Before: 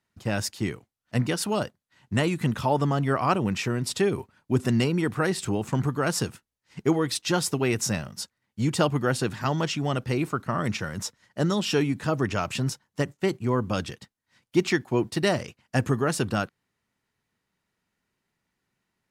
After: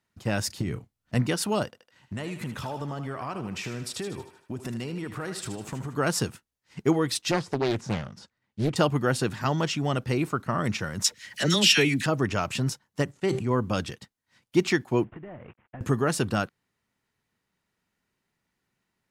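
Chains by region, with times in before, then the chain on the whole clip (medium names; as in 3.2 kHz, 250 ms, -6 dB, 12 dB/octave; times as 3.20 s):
0.47–1.15 s: bass shelf 280 Hz +11.5 dB + compression 12:1, threshold -23 dBFS + doubling 32 ms -13.5 dB
1.65–5.95 s: compression 5:1, threshold -31 dBFS + thinning echo 77 ms, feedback 52%, high-pass 410 Hz, level -8.5 dB
7.31–8.76 s: de-esser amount 90% + distance through air 73 m + loudspeaker Doppler distortion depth 0.79 ms
11.04–12.06 s: resonant high shelf 1.5 kHz +10 dB, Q 1.5 + upward compressor, threshold -32 dBFS + phase dispersion lows, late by 47 ms, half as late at 1 kHz
13.11–13.51 s: low-pass 11 kHz 24 dB/octave + feedback comb 130 Hz, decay 0.15 s, mix 40% + decay stretcher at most 50 dB/s
15.04–15.81 s: CVSD coder 16 kbps + low-pass 2 kHz + compression 10:1, threshold -38 dBFS
whole clip: none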